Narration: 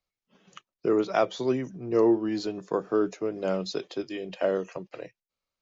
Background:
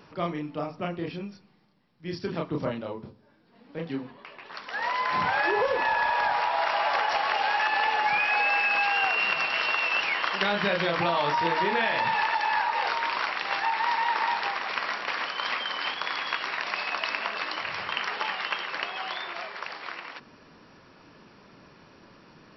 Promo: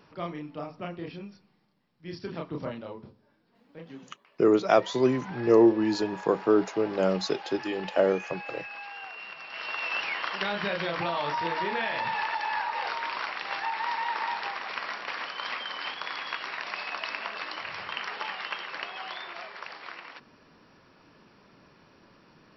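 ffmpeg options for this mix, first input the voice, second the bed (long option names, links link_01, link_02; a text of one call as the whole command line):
ffmpeg -i stem1.wav -i stem2.wav -filter_complex "[0:a]adelay=3550,volume=3dB[link_01];[1:a]volume=7dB,afade=type=out:start_time=3.23:duration=0.92:silence=0.266073,afade=type=in:start_time=9.44:duration=0.48:silence=0.251189[link_02];[link_01][link_02]amix=inputs=2:normalize=0" out.wav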